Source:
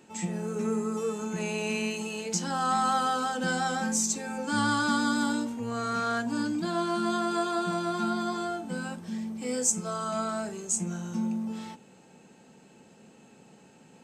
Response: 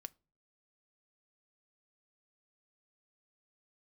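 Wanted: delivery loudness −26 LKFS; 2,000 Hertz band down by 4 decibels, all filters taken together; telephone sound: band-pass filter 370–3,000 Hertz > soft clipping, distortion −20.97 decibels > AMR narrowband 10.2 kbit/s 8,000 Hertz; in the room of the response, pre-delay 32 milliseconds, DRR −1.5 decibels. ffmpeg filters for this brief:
-filter_complex "[0:a]equalizer=frequency=2000:width_type=o:gain=-6,asplit=2[link_01][link_02];[1:a]atrim=start_sample=2205,adelay=32[link_03];[link_02][link_03]afir=irnorm=-1:irlink=0,volume=7dB[link_04];[link_01][link_04]amix=inputs=2:normalize=0,highpass=370,lowpass=3000,asoftclip=threshold=-18.5dB,volume=5dB" -ar 8000 -c:a libopencore_amrnb -b:a 10200

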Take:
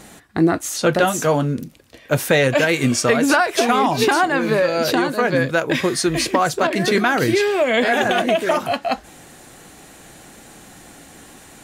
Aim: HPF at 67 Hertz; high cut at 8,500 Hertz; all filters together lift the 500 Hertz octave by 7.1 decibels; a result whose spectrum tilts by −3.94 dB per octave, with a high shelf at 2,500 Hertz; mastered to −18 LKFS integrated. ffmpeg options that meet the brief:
ffmpeg -i in.wav -af "highpass=67,lowpass=8500,equalizer=frequency=500:width_type=o:gain=8.5,highshelf=frequency=2500:gain=6,volume=-5dB" out.wav

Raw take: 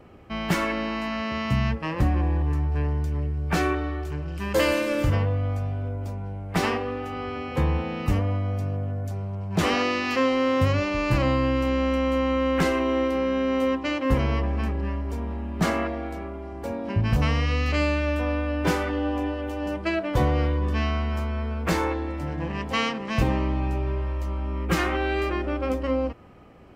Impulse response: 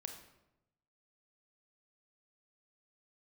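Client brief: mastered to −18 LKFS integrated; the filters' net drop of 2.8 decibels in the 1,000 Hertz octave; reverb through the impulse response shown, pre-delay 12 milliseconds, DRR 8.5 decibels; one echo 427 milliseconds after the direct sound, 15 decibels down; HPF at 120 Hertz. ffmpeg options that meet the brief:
-filter_complex "[0:a]highpass=120,equalizer=frequency=1000:width_type=o:gain=-3.5,aecho=1:1:427:0.178,asplit=2[link_01][link_02];[1:a]atrim=start_sample=2205,adelay=12[link_03];[link_02][link_03]afir=irnorm=-1:irlink=0,volume=-5.5dB[link_04];[link_01][link_04]amix=inputs=2:normalize=0,volume=9dB"

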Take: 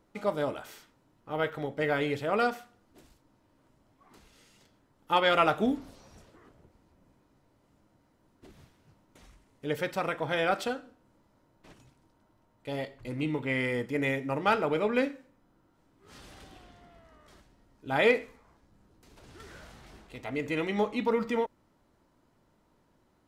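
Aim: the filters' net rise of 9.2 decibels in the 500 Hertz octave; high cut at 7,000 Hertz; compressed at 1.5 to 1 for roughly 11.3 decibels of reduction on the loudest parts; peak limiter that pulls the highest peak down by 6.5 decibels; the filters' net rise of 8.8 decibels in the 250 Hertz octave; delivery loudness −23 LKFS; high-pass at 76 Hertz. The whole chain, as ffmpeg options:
ffmpeg -i in.wav -af "highpass=76,lowpass=7000,equalizer=frequency=250:width_type=o:gain=8,equalizer=frequency=500:width_type=o:gain=8.5,acompressor=threshold=-42dB:ratio=1.5,volume=10.5dB,alimiter=limit=-11.5dB:level=0:latency=1" out.wav

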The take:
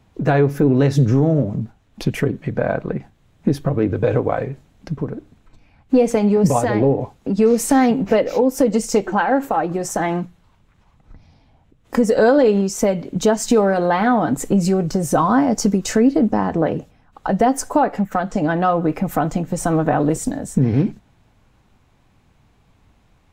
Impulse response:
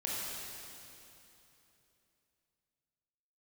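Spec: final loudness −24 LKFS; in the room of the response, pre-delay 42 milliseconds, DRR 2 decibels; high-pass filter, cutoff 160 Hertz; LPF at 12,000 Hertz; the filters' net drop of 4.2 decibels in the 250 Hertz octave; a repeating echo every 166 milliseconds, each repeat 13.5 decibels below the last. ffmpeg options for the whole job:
-filter_complex "[0:a]highpass=160,lowpass=12000,equalizer=frequency=250:width_type=o:gain=-4,aecho=1:1:166|332:0.211|0.0444,asplit=2[link_01][link_02];[1:a]atrim=start_sample=2205,adelay=42[link_03];[link_02][link_03]afir=irnorm=-1:irlink=0,volume=-6.5dB[link_04];[link_01][link_04]amix=inputs=2:normalize=0,volume=-5.5dB"

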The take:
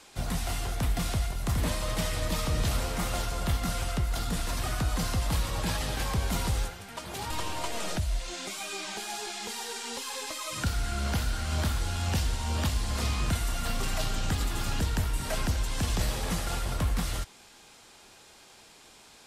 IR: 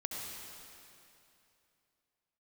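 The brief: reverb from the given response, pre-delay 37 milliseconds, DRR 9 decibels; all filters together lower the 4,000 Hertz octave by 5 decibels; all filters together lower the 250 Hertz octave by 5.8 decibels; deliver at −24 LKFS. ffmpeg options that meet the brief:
-filter_complex "[0:a]equalizer=frequency=250:width_type=o:gain=-9,equalizer=frequency=4000:width_type=o:gain=-6.5,asplit=2[link_01][link_02];[1:a]atrim=start_sample=2205,adelay=37[link_03];[link_02][link_03]afir=irnorm=-1:irlink=0,volume=-10.5dB[link_04];[link_01][link_04]amix=inputs=2:normalize=0,volume=8.5dB"

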